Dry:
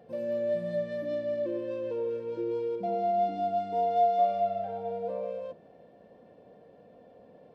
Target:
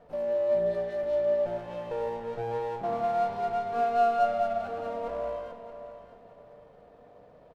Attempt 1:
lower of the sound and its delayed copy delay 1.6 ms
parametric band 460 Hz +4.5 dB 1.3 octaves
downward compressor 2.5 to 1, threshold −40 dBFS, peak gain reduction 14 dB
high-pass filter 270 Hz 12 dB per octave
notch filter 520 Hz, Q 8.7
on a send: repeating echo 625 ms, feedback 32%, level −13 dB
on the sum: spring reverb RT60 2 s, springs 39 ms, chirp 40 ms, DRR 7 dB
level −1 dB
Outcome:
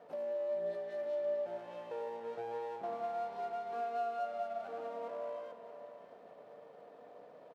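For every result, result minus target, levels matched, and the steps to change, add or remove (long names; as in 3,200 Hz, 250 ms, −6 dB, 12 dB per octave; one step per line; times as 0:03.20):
downward compressor: peak gain reduction +14 dB; 250 Hz band −2.5 dB
remove: downward compressor 2.5 to 1, threshold −40 dBFS, peak gain reduction 14 dB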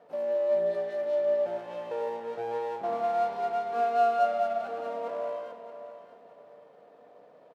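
250 Hz band −4.0 dB
remove: high-pass filter 270 Hz 12 dB per octave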